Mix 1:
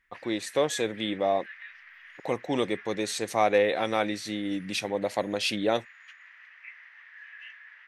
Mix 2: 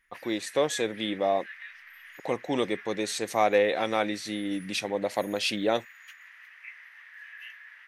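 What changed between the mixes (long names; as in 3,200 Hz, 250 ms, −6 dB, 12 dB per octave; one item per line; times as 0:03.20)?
speech: add parametric band 96 Hz −3.5 dB 1.1 octaves
background: remove high-frequency loss of the air 110 metres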